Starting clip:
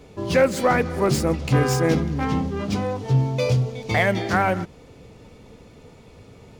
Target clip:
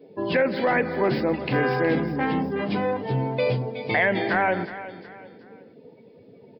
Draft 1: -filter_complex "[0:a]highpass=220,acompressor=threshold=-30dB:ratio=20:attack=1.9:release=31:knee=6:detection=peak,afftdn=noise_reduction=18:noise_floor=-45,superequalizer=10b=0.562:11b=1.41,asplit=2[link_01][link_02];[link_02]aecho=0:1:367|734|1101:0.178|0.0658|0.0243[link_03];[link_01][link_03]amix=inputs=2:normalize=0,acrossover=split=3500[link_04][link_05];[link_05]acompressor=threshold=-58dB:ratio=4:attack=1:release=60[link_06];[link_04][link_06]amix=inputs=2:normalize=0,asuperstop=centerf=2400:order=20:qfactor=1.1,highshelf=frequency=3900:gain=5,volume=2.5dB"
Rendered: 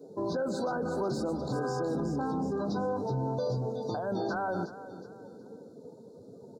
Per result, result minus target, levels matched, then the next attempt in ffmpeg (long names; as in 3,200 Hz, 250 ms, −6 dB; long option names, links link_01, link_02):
downward compressor: peak gain reduction +10.5 dB; 2,000 Hz band −9.0 dB
-filter_complex "[0:a]highpass=220,acompressor=threshold=-19dB:ratio=20:attack=1.9:release=31:knee=6:detection=peak,afftdn=noise_reduction=18:noise_floor=-45,superequalizer=10b=0.562:11b=1.41,asplit=2[link_01][link_02];[link_02]aecho=0:1:367|734|1101:0.178|0.0658|0.0243[link_03];[link_01][link_03]amix=inputs=2:normalize=0,acrossover=split=3500[link_04][link_05];[link_05]acompressor=threshold=-58dB:ratio=4:attack=1:release=60[link_06];[link_04][link_06]amix=inputs=2:normalize=0,asuperstop=centerf=2400:order=20:qfactor=1.1,highshelf=frequency=3900:gain=5,volume=2.5dB"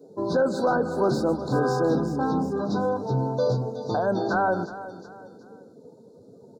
2,000 Hz band −7.5 dB
-filter_complex "[0:a]highpass=220,acompressor=threshold=-19dB:ratio=20:attack=1.9:release=31:knee=6:detection=peak,afftdn=noise_reduction=18:noise_floor=-45,superequalizer=10b=0.562:11b=1.41,asplit=2[link_01][link_02];[link_02]aecho=0:1:367|734|1101:0.178|0.0658|0.0243[link_03];[link_01][link_03]amix=inputs=2:normalize=0,acrossover=split=3500[link_04][link_05];[link_05]acompressor=threshold=-58dB:ratio=4:attack=1:release=60[link_06];[link_04][link_06]amix=inputs=2:normalize=0,asuperstop=centerf=8700:order=20:qfactor=1.1,highshelf=frequency=3900:gain=5,volume=2.5dB"